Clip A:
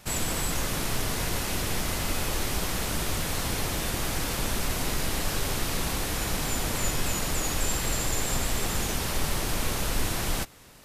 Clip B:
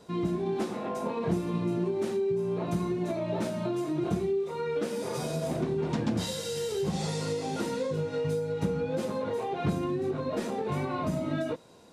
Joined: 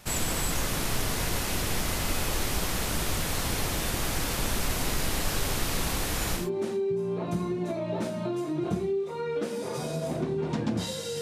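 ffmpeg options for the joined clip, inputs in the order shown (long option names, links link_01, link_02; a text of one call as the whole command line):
ffmpeg -i cue0.wav -i cue1.wav -filter_complex "[0:a]apad=whole_dur=11.21,atrim=end=11.21,atrim=end=6.5,asetpts=PTS-STARTPTS[link_01];[1:a]atrim=start=1.72:end=6.61,asetpts=PTS-STARTPTS[link_02];[link_01][link_02]acrossfade=duration=0.18:curve1=tri:curve2=tri" out.wav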